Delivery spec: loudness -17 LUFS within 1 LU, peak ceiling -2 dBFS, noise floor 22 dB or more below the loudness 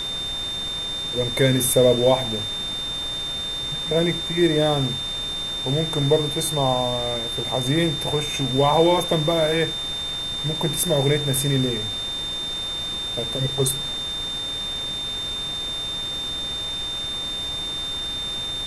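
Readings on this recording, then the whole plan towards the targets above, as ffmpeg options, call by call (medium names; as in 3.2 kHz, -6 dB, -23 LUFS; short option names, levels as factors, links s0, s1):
steady tone 3.6 kHz; tone level -26 dBFS; noise floor -29 dBFS; noise floor target -45 dBFS; loudness -22.5 LUFS; peak level -6.0 dBFS; loudness target -17.0 LUFS
-> -af "bandreject=f=3600:w=30"
-af "afftdn=nr=16:nf=-29"
-af "volume=1.88,alimiter=limit=0.794:level=0:latency=1"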